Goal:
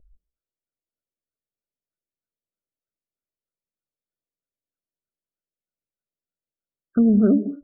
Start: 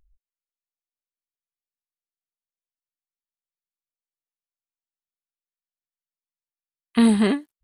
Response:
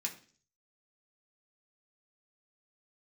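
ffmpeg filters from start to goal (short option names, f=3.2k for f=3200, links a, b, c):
-filter_complex "[0:a]alimiter=limit=-17dB:level=0:latency=1,asuperstop=centerf=940:order=8:qfactor=1.4,asplit=2[a][b];[1:a]atrim=start_sample=2205,atrim=end_sample=4410,adelay=149[c];[b][c]afir=irnorm=-1:irlink=0,volume=-12dB[d];[a][d]amix=inputs=2:normalize=0,afftfilt=real='re*lt(b*sr/1024,680*pow(1600/680,0.5+0.5*sin(2*PI*3.2*pts/sr)))':imag='im*lt(b*sr/1024,680*pow(1600/680,0.5+0.5*sin(2*PI*3.2*pts/sr)))':win_size=1024:overlap=0.75,volume=7.5dB"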